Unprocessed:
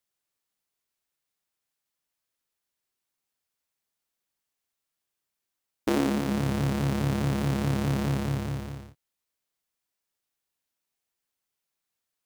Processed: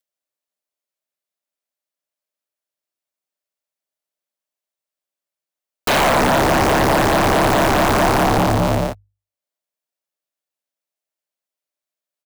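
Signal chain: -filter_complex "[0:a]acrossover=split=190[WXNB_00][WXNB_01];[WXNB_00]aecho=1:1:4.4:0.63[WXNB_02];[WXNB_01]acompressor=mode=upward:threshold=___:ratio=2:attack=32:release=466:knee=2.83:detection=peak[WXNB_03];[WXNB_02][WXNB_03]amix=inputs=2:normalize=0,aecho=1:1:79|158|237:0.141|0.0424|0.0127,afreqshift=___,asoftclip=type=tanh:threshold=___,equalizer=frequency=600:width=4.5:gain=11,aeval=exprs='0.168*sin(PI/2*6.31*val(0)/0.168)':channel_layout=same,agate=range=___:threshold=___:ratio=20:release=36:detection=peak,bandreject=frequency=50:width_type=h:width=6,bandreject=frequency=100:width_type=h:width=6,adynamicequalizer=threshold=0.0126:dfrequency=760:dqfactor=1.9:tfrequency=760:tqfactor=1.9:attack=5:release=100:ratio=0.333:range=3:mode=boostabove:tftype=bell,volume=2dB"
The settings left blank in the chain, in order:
-33dB, -30, -18.5dB, -51dB, -34dB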